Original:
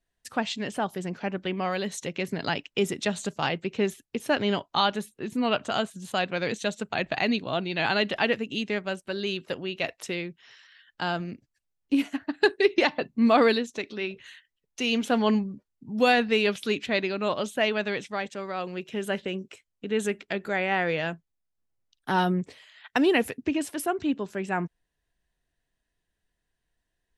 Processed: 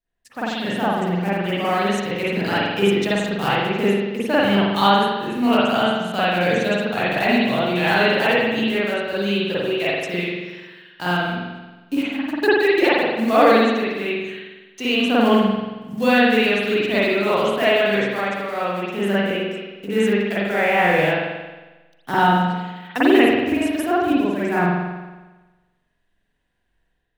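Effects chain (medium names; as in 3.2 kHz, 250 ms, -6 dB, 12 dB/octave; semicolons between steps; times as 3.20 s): block-companded coder 5-bit; level rider gain up to 9 dB; spring tank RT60 1.2 s, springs 45 ms, chirp 40 ms, DRR -9.5 dB; trim -9 dB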